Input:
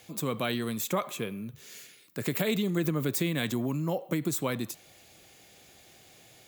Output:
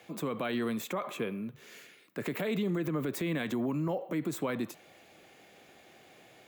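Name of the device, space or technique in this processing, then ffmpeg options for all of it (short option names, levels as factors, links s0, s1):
DJ mixer with the lows and highs turned down: -filter_complex "[0:a]acrossover=split=170 2800:gain=0.224 1 0.224[s0][s1][s2];[s0][s1][s2]amix=inputs=3:normalize=0,alimiter=level_in=1.41:limit=0.0631:level=0:latency=1:release=57,volume=0.708,volume=1.41"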